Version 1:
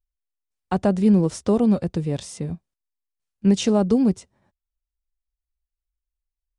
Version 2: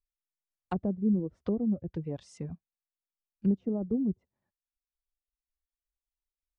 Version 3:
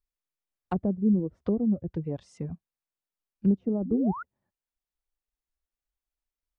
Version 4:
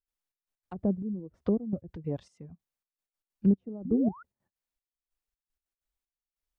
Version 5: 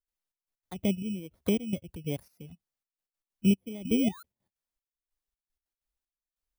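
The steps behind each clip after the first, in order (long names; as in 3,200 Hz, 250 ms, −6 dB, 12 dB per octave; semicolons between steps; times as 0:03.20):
reverb reduction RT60 1.2 s; treble cut that deepens with the level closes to 390 Hz, closed at −19 dBFS; level −8.5 dB
high-shelf EQ 2,200 Hz −7 dB; sound drawn into the spectrogram rise, 0:03.85–0:04.23, 220–1,500 Hz −40 dBFS; level +3.5 dB
gate pattern ".xxx..x.x.xxx..." 191 BPM −12 dB
samples in bit-reversed order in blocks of 16 samples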